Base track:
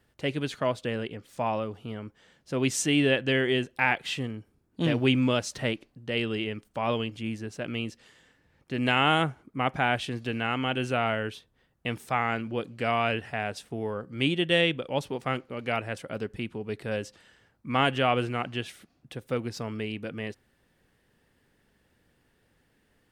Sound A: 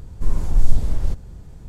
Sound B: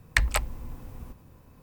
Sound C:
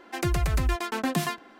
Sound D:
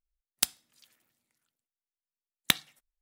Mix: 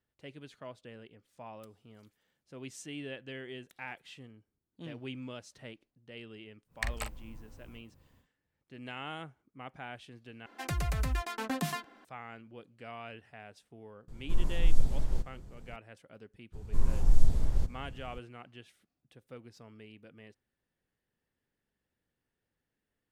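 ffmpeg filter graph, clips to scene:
-filter_complex "[1:a]asplit=2[a][b];[0:a]volume=-18.5dB[c];[4:a]acompressor=threshold=-48dB:ratio=6:attack=3.2:release=140:knee=1:detection=peak[d];[2:a]asplit=2[e][f];[f]adelay=43,volume=-8dB[g];[e][g]amix=inputs=2:normalize=0[h];[3:a]bandreject=f=350:w=9.6[i];[a]equalizer=f=71:t=o:w=0.77:g=-8[j];[c]asplit=2[k][l];[k]atrim=end=10.464[m];[i]atrim=end=1.59,asetpts=PTS-STARTPTS,volume=-6.5dB[n];[l]atrim=start=12.046[o];[d]atrim=end=3.01,asetpts=PTS-STARTPTS,volume=-13.5dB,afade=t=in:d=0.004:c=hsin,afade=t=out:st=3.006:d=0.004:c=hsin,adelay=1210[p];[h]atrim=end=1.62,asetpts=PTS-STARTPTS,volume=-12dB,afade=t=in:d=0.1,afade=t=out:st=1.52:d=0.1,adelay=293706S[q];[j]atrim=end=1.68,asetpts=PTS-STARTPTS,volume=-8dB,afade=t=in:d=0.004:c=hsin,afade=t=out:st=1.676:d=0.004:c=hsin,adelay=14080[r];[b]atrim=end=1.68,asetpts=PTS-STARTPTS,volume=-7dB,afade=t=in:d=0.02,afade=t=out:st=1.66:d=0.02,adelay=728532S[s];[m][n]acrossfade=d=0.004:c1=hsin:c2=hsin[t];[t][o]acrossfade=d=0.004:c1=hsin:c2=hsin[u];[u][p][q][r][s]amix=inputs=5:normalize=0"

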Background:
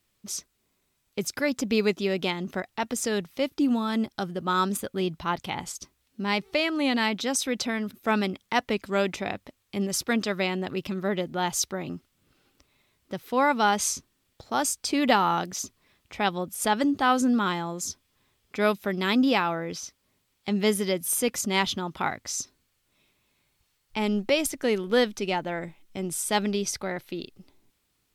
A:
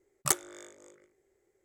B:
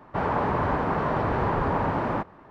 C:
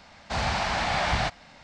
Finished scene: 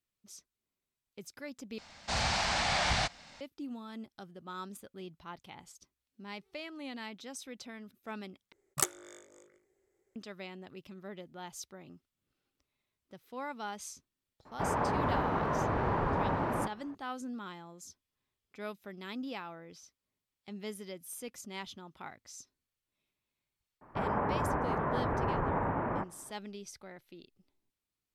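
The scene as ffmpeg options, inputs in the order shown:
-filter_complex "[2:a]asplit=2[a][b];[0:a]volume=-18dB[c];[3:a]highshelf=f=3.9k:g=11.5[d];[b]lowpass=f=2.3k:w=0.5412,lowpass=f=2.3k:w=1.3066[e];[c]asplit=3[f][g][h];[f]atrim=end=1.784[i];[d]atrim=end=1.63,asetpts=PTS-STARTPTS,volume=-6dB[j];[g]atrim=start=3.406:end=8.524[k];[1:a]atrim=end=1.64,asetpts=PTS-STARTPTS,volume=-3.5dB[l];[h]atrim=start=10.156[m];[a]atrim=end=2.5,asetpts=PTS-STARTPTS,volume=-6dB,afade=t=in:d=0.004:c=hsin,afade=t=out:st=2.496:d=0.004:c=hsin,adelay=14450[n];[e]atrim=end=2.5,asetpts=PTS-STARTPTS,volume=-7dB,afade=t=in:d=0.004:c=hsin,afade=t=out:st=2.496:d=0.004:c=hsin,adelay=23810[o];[i][j]acrossfade=d=0.004:c1=hsin:c2=hsin[p];[p][k]acrossfade=d=0.004:c1=hsin:c2=hsin[q];[q][l]acrossfade=d=0.004:c1=hsin:c2=hsin[r];[r][m]acrossfade=d=0.004:c1=hsin:c2=hsin[s];[s][n][o]amix=inputs=3:normalize=0"

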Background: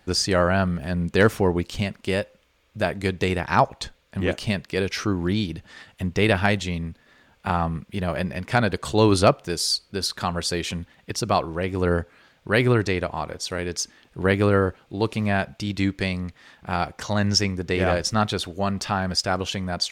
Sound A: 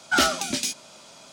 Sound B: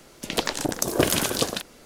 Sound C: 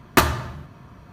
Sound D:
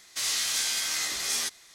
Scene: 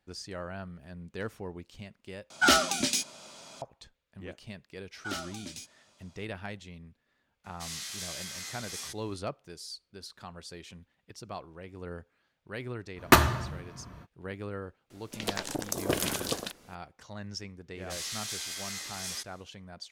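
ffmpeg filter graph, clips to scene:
-filter_complex "[1:a]asplit=2[a][b];[4:a]asplit=2[c][d];[0:a]volume=-19.5dB,asplit=2[e][f];[e]atrim=end=2.304[g];[a]atrim=end=1.32,asetpts=PTS-STARTPTS,volume=-1.5dB[h];[f]atrim=start=3.616[i];[b]atrim=end=1.32,asetpts=PTS-STARTPTS,volume=-17dB,afade=t=in:d=0.004:c=hsin,afade=t=out:st=1.316:d=0.004:c=hsin,adelay=217413S[j];[c]atrim=end=1.74,asetpts=PTS-STARTPTS,volume=-11.5dB,afade=t=in:d=0.004:c=hsin,afade=t=out:st=1.736:d=0.004:c=hsin,adelay=7440[k];[3:a]atrim=end=1.12,asetpts=PTS-STARTPTS,volume=-2dB,afade=t=in:d=0.05,afade=t=out:st=1.07:d=0.05,adelay=12950[l];[2:a]atrim=end=1.85,asetpts=PTS-STARTPTS,volume=-8dB,afade=t=in:d=0.004:c=hsin,afade=t=out:st=1.846:d=0.004:c=hsin,adelay=14900[m];[d]atrim=end=1.74,asetpts=PTS-STARTPTS,volume=-9.5dB,afade=t=in:d=0.1,afade=t=out:st=1.64:d=0.1,adelay=17740[n];[g][h]acrossfade=d=0.004:c1=hsin:c2=hsin[o];[o][i]acrossfade=d=0.004:c1=hsin:c2=hsin[p];[p][j][k][l][m][n]amix=inputs=6:normalize=0"

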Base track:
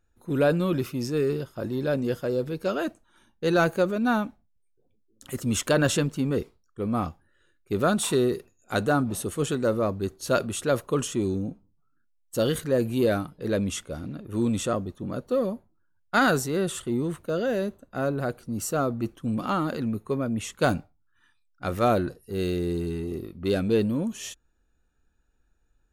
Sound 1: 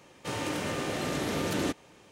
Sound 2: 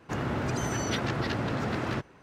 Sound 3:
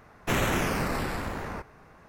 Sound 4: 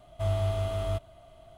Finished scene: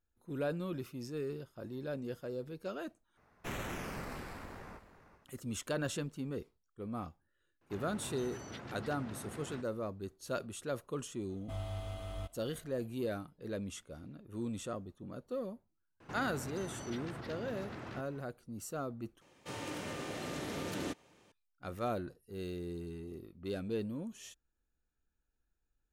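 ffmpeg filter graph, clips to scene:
-filter_complex "[2:a]asplit=2[a][b];[0:a]volume=-14dB[c];[3:a]aecho=1:1:389:0.224[d];[4:a]aecho=1:1:3.9:0.47[e];[b]acompressor=threshold=-38dB:ratio=6:attack=3.2:release=140:knee=1:detection=peak[f];[c]asplit=3[g][h][i];[g]atrim=end=3.174[j];[d]atrim=end=2.08,asetpts=PTS-STARTPTS,volume=-14.5dB[k];[h]atrim=start=5.246:end=19.214[l];[1:a]atrim=end=2.11,asetpts=PTS-STARTPTS,volume=-9dB[m];[i]atrim=start=21.316[n];[a]atrim=end=2.22,asetpts=PTS-STARTPTS,volume=-17dB,afade=t=in:d=0.004:c=hsin,afade=t=out:st=2.216:d=0.004:c=hsin,adelay=7610[o];[e]atrim=end=1.57,asetpts=PTS-STARTPTS,volume=-10dB,afade=t=in:d=0.004:c=hsin,afade=t=out:st=1.566:d=0.004:c=hsin,adelay=11290[p];[f]atrim=end=2.22,asetpts=PTS-STARTPTS,volume=-4dB,afade=t=in:d=0.004:c=hsin,afade=t=out:st=2.216:d=0.004:c=hsin,adelay=16000[q];[j][k]acrossfade=d=0.004:c1=hsin:c2=hsin[r];[r][l]acrossfade=d=0.004:c1=hsin:c2=hsin[s];[s][m]acrossfade=d=0.004:c1=hsin:c2=hsin[t];[t][n]acrossfade=d=0.004:c1=hsin:c2=hsin[u];[u][o][p][q]amix=inputs=4:normalize=0"

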